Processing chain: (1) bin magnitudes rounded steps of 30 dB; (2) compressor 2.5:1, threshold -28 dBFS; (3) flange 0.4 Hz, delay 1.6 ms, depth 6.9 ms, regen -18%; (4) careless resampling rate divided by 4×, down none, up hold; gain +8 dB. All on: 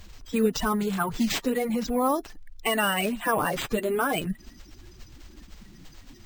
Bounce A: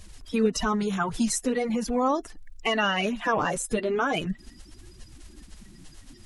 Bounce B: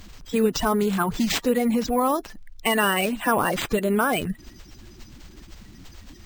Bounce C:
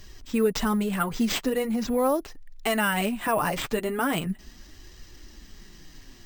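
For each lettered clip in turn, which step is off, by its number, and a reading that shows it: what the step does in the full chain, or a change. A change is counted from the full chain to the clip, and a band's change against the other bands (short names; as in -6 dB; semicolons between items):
4, 8 kHz band +2.5 dB; 3, loudness change +3.5 LU; 1, 125 Hz band +1.5 dB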